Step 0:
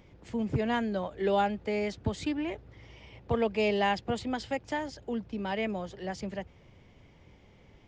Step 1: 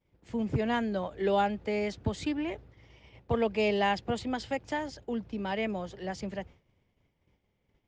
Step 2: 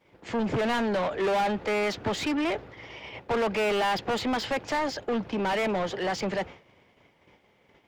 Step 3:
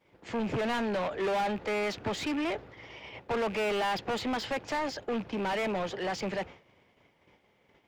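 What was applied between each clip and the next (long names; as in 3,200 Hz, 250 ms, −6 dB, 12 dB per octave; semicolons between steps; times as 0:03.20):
downward expander −45 dBFS
mid-hump overdrive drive 30 dB, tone 2,300 Hz, clips at −16 dBFS; level −3 dB
loose part that buzzes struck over −37 dBFS, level −32 dBFS; level −4 dB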